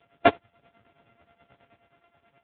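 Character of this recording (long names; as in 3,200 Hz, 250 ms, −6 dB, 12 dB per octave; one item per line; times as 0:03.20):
a buzz of ramps at a fixed pitch in blocks of 64 samples
tremolo triangle 9.4 Hz, depth 85%
AMR narrowband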